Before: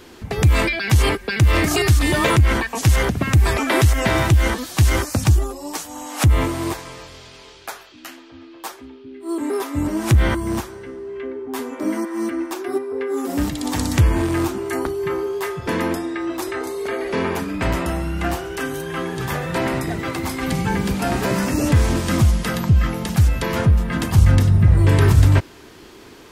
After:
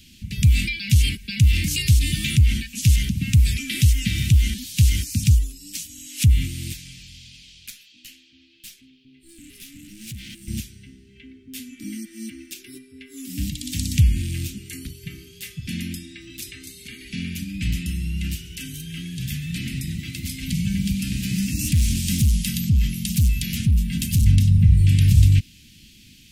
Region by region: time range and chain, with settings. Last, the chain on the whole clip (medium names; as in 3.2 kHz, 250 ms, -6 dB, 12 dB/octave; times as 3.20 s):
7.70–10.48 s: high-pass 240 Hz + valve stage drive 29 dB, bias 0.4
21.59–24.26 s: treble shelf 5.6 kHz +8 dB + overload inside the chain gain 12.5 dB
whole clip: elliptic band-stop 210–2600 Hz, stop band 70 dB; dynamic bell 770 Hz, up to -3 dB, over -43 dBFS, Q 1.1